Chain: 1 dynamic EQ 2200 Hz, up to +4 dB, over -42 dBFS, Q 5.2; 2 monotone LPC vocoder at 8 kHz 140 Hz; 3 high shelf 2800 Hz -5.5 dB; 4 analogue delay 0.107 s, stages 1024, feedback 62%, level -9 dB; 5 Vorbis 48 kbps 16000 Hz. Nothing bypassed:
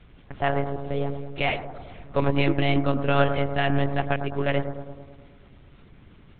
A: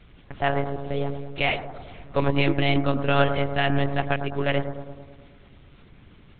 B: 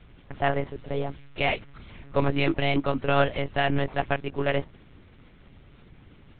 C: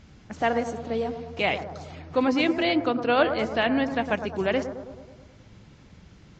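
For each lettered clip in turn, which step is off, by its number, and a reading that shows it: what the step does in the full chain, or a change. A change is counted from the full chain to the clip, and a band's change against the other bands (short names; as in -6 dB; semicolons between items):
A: 3, 4 kHz band +3.0 dB; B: 4, momentary loudness spread change -5 LU; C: 2, 125 Hz band -14.0 dB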